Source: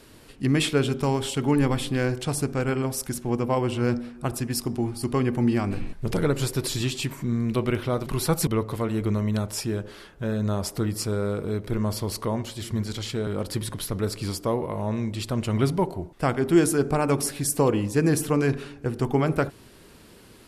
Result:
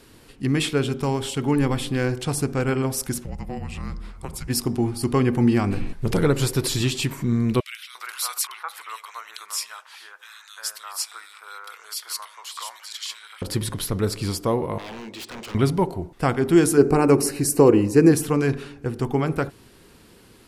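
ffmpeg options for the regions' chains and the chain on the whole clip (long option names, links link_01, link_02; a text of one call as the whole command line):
ffmpeg -i in.wav -filter_complex "[0:a]asettb=1/sr,asplit=3[link_01][link_02][link_03];[link_01]atrim=end=3.244[link_04];[link_02]atrim=start=3.24:end=4.48,asetpts=PTS-STARTPTS,afade=type=in:duration=0.004:curve=qsin,afade=type=out:start_time=1.236:duration=0.004:curve=qsin,highpass=160,afreqshift=-280,acompressor=threshold=-35dB:ratio=2.5:attack=3.2:release=140:knee=1:detection=peak[link_05];[link_03]atrim=start=4.476[link_06];[link_04][link_05]acrossfade=duration=0.004:curve1=hsin:curve2=qsin[link_07];[link_07][link_06]acrossfade=duration=0.004:curve1=qsin:curve2=hsin,asettb=1/sr,asplit=3[link_08][link_09][link_10];[link_08]atrim=end=7.604[link_11];[link_09]atrim=start=7.6:end=13.42,asetpts=PTS-STARTPTS,afade=type=in:duration=0.004:curve=qsin,afade=type=out:start_time=5.816:duration=0.004:curve=qsin,highpass=frequency=1100:width=0.5412,highpass=frequency=1100:width=1.3066,acrossover=split=2000[link_12][link_13];[link_12]adelay=350[link_14];[link_14][link_13]amix=inputs=2:normalize=0,atrim=end_sample=256662[link_15];[link_10]atrim=start=13.416[link_16];[link_11][link_15]acrossfade=duration=0.004:curve1=hsin:curve2=qsin[link_17];[link_17][link_16]acrossfade=duration=0.004:curve1=qsin:curve2=hsin,asettb=1/sr,asplit=3[link_18][link_19][link_20];[link_18]atrim=end=14.784[link_21];[link_19]atrim=start=14.78:end=15.55,asetpts=PTS-STARTPTS,afade=type=in:duration=0.004:curve=qsin,afade=type=out:start_time=0.766:duration=0.004:curve=qsin,highpass=390,lowpass=6300,aeval=exprs='0.0211*(abs(mod(val(0)/0.0211+3,4)-2)-1)':channel_layout=same[link_22];[link_20]atrim=start=15.546[link_23];[link_21][link_22]acrossfade=duration=0.004:curve1=hsin:curve2=qsin[link_24];[link_24][link_23]acrossfade=duration=0.004:curve1=qsin:curve2=hsin,asettb=1/sr,asplit=3[link_25][link_26][link_27];[link_25]atrim=end=16.774[link_28];[link_26]atrim=start=16.77:end=18.12,asetpts=PTS-STARTPTS,afade=type=in:duration=0.004:curve=qsin,afade=type=out:start_time=1.346:duration=0.004:curve=qsin,asuperstop=centerf=3400:order=4:qfactor=4.3,equalizer=frequency=360:width=1.6:gain=8.5[link_29];[link_27]atrim=start=18.116[link_30];[link_28][link_29]acrossfade=duration=0.004:curve1=hsin:curve2=qsin[link_31];[link_31][link_30]acrossfade=duration=0.004:curve1=qsin:curve2=hsin,bandreject=frequency=610:width=12,dynaudnorm=framelen=280:gausssize=17:maxgain=4dB" out.wav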